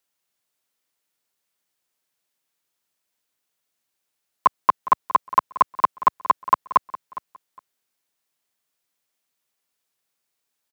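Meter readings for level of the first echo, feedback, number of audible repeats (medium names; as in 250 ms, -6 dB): -17.0 dB, 19%, 2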